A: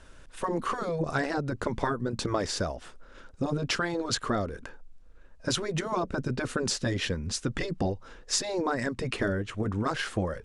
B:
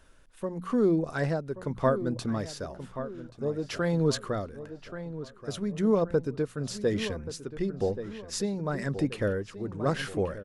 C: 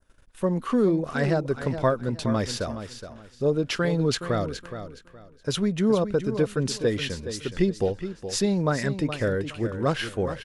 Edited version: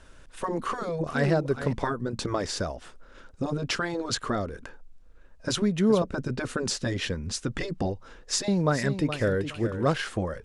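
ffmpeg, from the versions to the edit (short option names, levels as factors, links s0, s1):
-filter_complex "[2:a]asplit=3[s0][s1][s2];[0:a]asplit=4[s3][s4][s5][s6];[s3]atrim=end=1.072[s7];[s0]atrim=start=1.068:end=1.732[s8];[s4]atrim=start=1.728:end=5.622[s9];[s1]atrim=start=5.618:end=6.022[s10];[s5]atrim=start=6.018:end=8.482[s11];[s2]atrim=start=8.478:end=9.982[s12];[s6]atrim=start=9.978[s13];[s7][s8]acrossfade=d=0.004:c1=hsin:c2=hsin[s14];[s14][s9]acrossfade=d=0.004:c1=hsin:c2=hsin[s15];[s15][s10]acrossfade=d=0.004:c1=hsin:c2=hsin[s16];[s16][s11]acrossfade=d=0.004:c1=hsin:c2=hsin[s17];[s17][s12]acrossfade=d=0.004:c1=hsin:c2=hsin[s18];[s18][s13]acrossfade=d=0.004:c1=hsin:c2=hsin"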